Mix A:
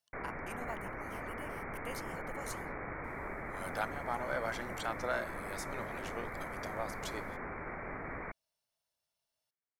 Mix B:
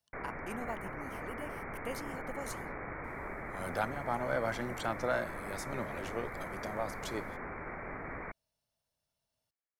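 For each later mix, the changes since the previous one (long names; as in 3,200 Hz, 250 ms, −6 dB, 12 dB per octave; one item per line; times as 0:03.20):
speech: add low-shelf EQ 420 Hz +12 dB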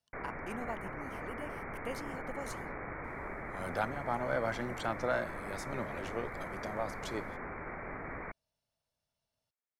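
master: add high-shelf EQ 10,000 Hz −9.5 dB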